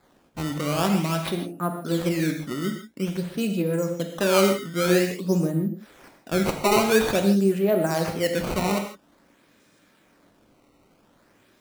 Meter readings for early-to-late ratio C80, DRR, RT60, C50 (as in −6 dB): 8.5 dB, 4.0 dB, non-exponential decay, 6.5 dB